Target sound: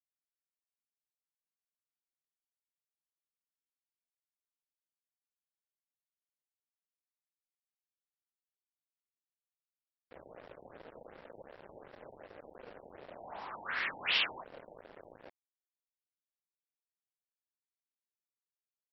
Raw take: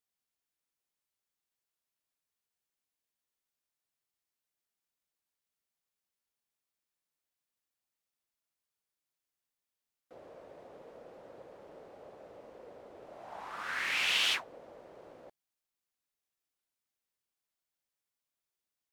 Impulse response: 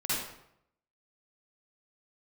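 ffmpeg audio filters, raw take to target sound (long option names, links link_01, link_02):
-af "acrusher=bits=7:mix=0:aa=0.5,afftfilt=real='re*lt(b*sr/1024,920*pow(5800/920,0.5+0.5*sin(2*PI*2.7*pts/sr)))':imag='im*lt(b*sr/1024,920*pow(5800/920,0.5+0.5*sin(2*PI*2.7*pts/sr)))':win_size=1024:overlap=0.75"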